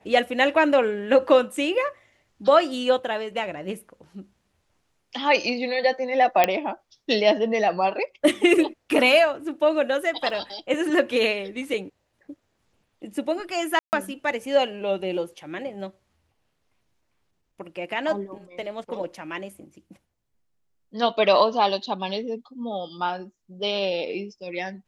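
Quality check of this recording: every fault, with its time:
6.44 pop -4 dBFS
10.3 gap 2.1 ms
13.79–13.93 gap 0.139 s

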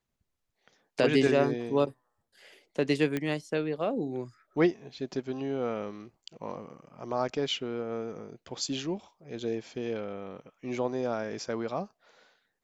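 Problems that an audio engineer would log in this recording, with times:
3.17 pop -17 dBFS

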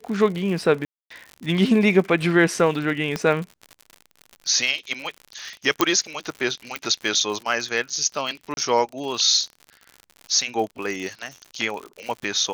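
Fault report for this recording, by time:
crackle 79/s -30 dBFS
0.85–1.1 gap 0.254 s
3.16 pop -11 dBFS
5.81 pop -1 dBFS
6.76 pop
8.54–8.57 gap 31 ms

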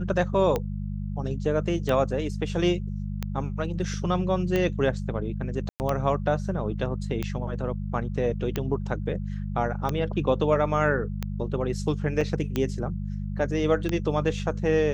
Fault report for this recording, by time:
hum 50 Hz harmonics 4 -31 dBFS
tick 45 rpm -13 dBFS
5.69–5.8 gap 0.109 s
12.21 gap 4 ms

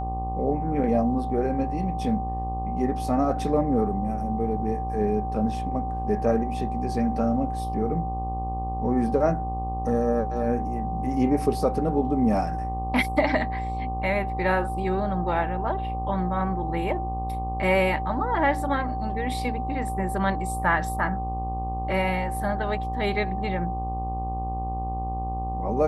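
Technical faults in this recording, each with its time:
buzz 60 Hz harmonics 20 -31 dBFS
tone 770 Hz -30 dBFS

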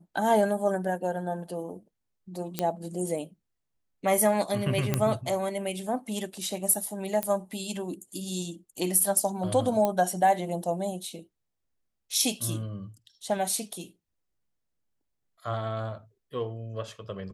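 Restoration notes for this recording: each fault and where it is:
2.59 pop -11 dBFS
4.94 pop -10 dBFS
7.23 pop -12 dBFS
9.85 pop -13 dBFS

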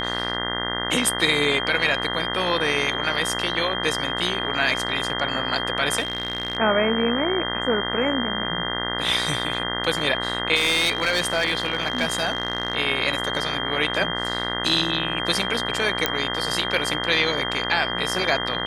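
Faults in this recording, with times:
buzz 60 Hz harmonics 34 -29 dBFS
tone 3200 Hz -28 dBFS
5.99–6.57 clipped -20.5 dBFS
10.55–12.75 clipped -15.5 dBFS
16.06 pop -3 dBFS

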